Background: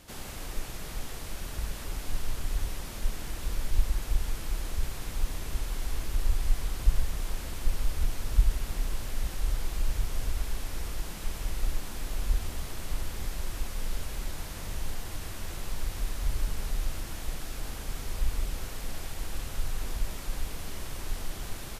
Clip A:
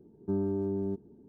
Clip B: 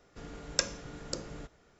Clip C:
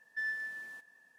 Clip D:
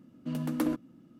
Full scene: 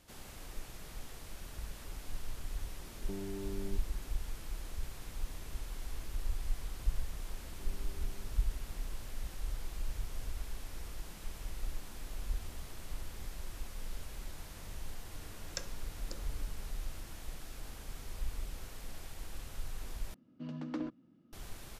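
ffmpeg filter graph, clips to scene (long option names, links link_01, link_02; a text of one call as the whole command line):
ffmpeg -i bed.wav -i cue0.wav -i cue1.wav -i cue2.wav -i cue3.wav -filter_complex "[1:a]asplit=2[link_01][link_02];[0:a]volume=-9.5dB[link_03];[link_01]acompressor=threshold=-34dB:ratio=6:attack=3.2:release=140:knee=1:detection=peak[link_04];[link_02]acompressor=threshold=-40dB:ratio=6:attack=3.2:release=140:knee=1:detection=peak[link_05];[4:a]lowpass=frequency=5500:width=0.5412,lowpass=frequency=5500:width=1.3066[link_06];[link_03]asplit=2[link_07][link_08];[link_07]atrim=end=20.144[link_09];[link_06]atrim=end=1.19,asetpts=PTS-STARTPTS,volume=-9dB[link_10];[link_08]atrim=start=21.326[link_11];[link_04]atrim=end=1.28,asetpts=PTS-STARTPTS,volume=-4dB,afade=type=in:duration=0.004:curve=hsin,afade=type=out:start_time=1.276:duration=0.004:curve=hsin,adelay=2810[link_12];[link_05]atrim=end=1.28,asetpts=PTS-STARTPTS,volume=-13dB,afade=type=in:duration=0.004:curve=hsin,afade=type=out:start_time=1.276:duration=0.004:curve=hsin,adelay=7320[link_13];[2:a]atrim=end=1.79,asetpts=PTS-STARTPTS,volume=-12.5dB,afade=type=in:duration=0.004:curve=hsin,afade=type=out:start_time=1.786:duration=0.004:curve=hsin,adelay=14980[link_14];[link_09][link_10]acrossfade=duration=0.004:curve1=hsin:curve2=hsin[link_15];[link_15][link_11]acrossfade=duration=0.004:curve1=hsin:curve2=hsin[link_16];[link_16][link_12][link_13][link_14]amix=inputs=4:normalize=0" out.wav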